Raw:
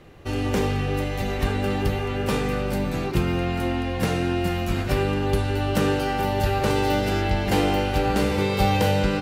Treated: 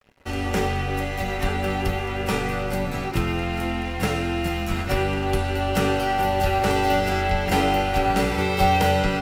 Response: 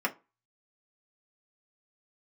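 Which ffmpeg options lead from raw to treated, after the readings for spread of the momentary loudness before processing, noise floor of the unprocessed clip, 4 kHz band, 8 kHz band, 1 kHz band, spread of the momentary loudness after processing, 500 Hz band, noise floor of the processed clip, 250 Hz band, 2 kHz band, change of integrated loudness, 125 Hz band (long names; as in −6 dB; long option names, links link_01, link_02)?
5 LU, −27 dBFS, +1.0 dB, +1.5 dB, +4.0 dB, 6 LU, −0.5 dB, −28 dBFS, −1.5 dB, +3.0 dB, +0.5 dB, −2.0 dB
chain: -filter_complex "[0:a]afreqshift=-13,aeval=exprs='sgn(val(0))*max(abs(val(0))-0.00631,0)':channel_layout=same,asplit=2[link_01][link_02];[1:a]atrim=start_sample=2205,lowshelf=frequency=180:gain=-11.5[link_03];[link_02][link_03]afir=irnorm=-1:irlink=0,volume=-11.5dB[link_04];[link_01][link_04]amix=inputs=2:normalize=0"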